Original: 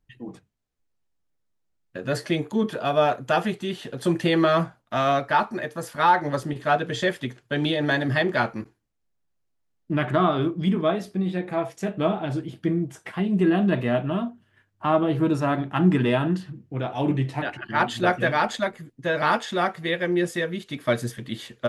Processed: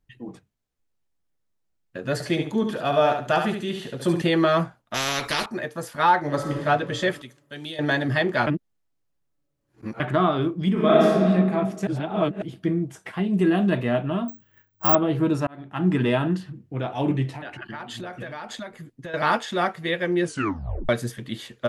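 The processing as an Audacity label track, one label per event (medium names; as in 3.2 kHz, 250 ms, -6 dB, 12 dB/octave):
2.130000	4.220000	feedback delay 71 ms, feedback 25%, level -6.5 dB
4.940000	5.460000	spectrum-flattening compressor 4:1
6.210000	6.640000	reverb throw, RT60 2.6 s, DRR 2 dB
7.220000	7.790000	pre-emphasis filter coefficient 0.8
8.470000	10.000000	reverse
10.720000	11.260000	reverb throw, RT60 1.8 s, DRR -6.5 dB
11.870000	12.420000	reverse
13.330000	13.780000	treble shelf 7.7 kHz +10.5 dB
14.280000	14.950000	careless resampling rate divided by 2×, down filtered, up zero stuff
15.470000	16.020000	fade in
17.340000	19.140000	compression 12:1, threshold -31 dBFS
20.240000	20.240000	tape stop 0.65 s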